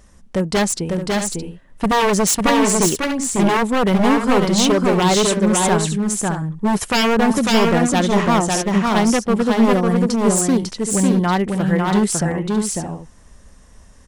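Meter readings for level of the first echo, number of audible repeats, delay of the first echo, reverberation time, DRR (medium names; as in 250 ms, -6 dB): -3.0 dB, 2, 549 ms, no reverb, no reverb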